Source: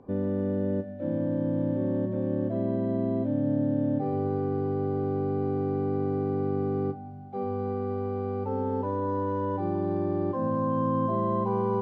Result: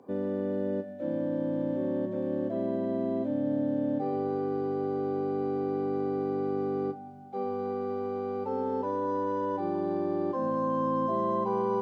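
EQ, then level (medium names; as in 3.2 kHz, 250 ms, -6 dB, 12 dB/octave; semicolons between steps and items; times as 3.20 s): high-pass 180 Hz 12 dB/octave; tone controls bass -4 dB, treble +9 dB; 0.0 dB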